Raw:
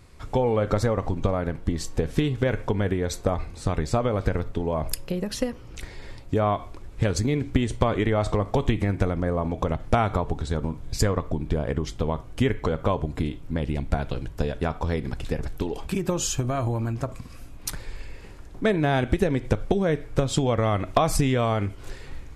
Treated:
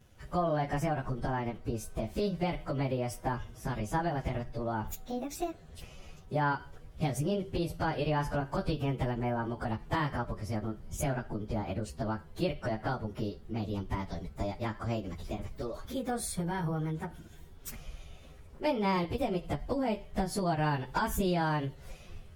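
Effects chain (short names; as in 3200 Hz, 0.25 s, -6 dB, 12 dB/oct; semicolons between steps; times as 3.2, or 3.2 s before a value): pitch shift by moving bins +5.5 st; gain -5.5 dB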